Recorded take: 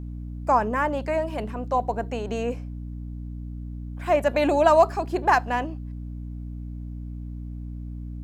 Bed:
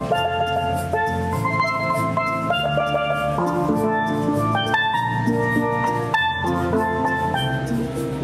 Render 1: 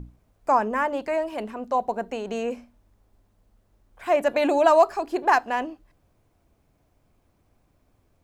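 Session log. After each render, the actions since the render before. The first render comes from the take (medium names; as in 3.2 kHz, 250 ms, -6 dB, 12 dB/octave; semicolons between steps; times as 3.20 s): hum notches 60/120/180/240/300 Hz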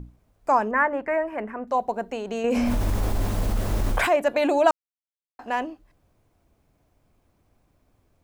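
0.71–1.68 s: resonant high shelf 2.7 kHz -12.5 dB, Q 3; 2.44–4.11 s: level flattener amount 100%; 4.71–5.39 s: mute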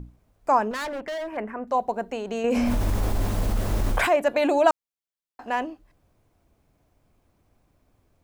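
0.71–1.37 s: overload inside the chain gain 29 dB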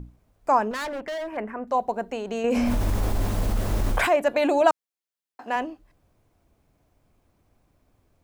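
4.61–5.56 s: high-pass 160 Hz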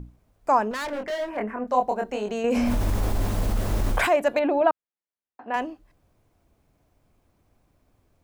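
0.86–2.31 s: doubling 24 ms -3 dB; 4.39–5.54 s: distance through air 460 m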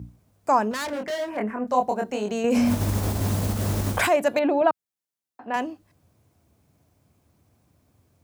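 high-pass 75 Hz 24 dB/octave; tone controls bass +6 dB, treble +6 dB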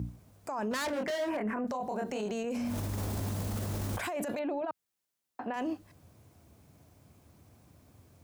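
compressor with a negative ratio -28 dBFS, ratio -1; peak limiter -26.5 dBFS, peak gain reduction 11.5 dB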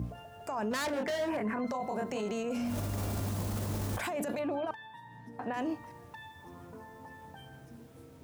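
add bed -29 dB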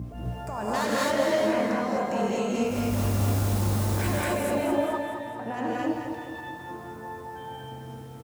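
on a send: feedback delay 212 ms, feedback 55%, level -7.5 dB; on the sum: gated-style reverb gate 280 ms rising, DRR -6 dB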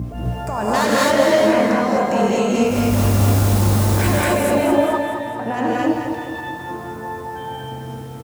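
trim +9.5 dB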